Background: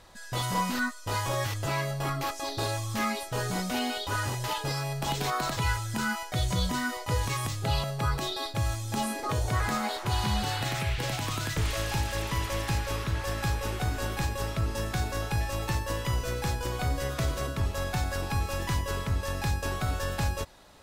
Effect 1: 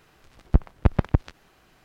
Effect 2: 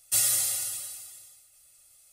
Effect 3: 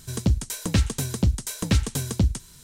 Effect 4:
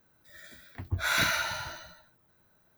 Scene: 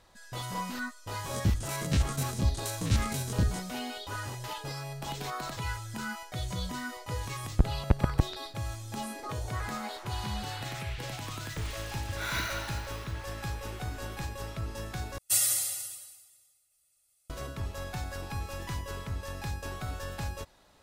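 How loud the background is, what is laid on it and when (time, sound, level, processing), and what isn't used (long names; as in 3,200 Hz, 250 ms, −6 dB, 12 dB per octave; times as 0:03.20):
background −7 dB
0:01.19: mix in 3 −4 dB + spectrum averaged block by block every 50 ms
0:07.05: mix in 1 −5 dB
0:11.17: mix in 4 −7.5 dB
0:15.18: overwrite with 2 −1 dB + expander for the loud parts, over −46 dBFS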